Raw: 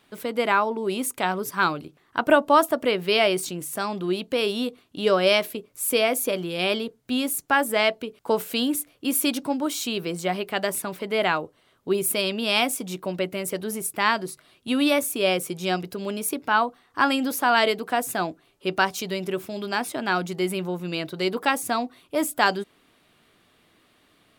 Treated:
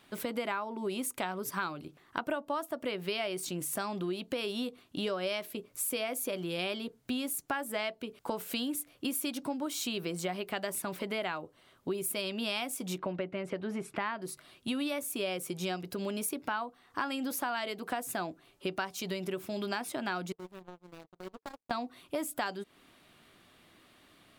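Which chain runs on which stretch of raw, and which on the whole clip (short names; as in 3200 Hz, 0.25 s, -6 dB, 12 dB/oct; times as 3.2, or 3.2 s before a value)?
12.98–14.22 LPF 2300 Hz + mismatched tape noise reduction encoder only
20.32–21.71 median filter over 25 samples + power-law curve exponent 3 + compressor 3:1, threshold -41 dBFS
whole clip: notch 450 Hz, Q 12; compressor 6:1, threshold -32 dBFS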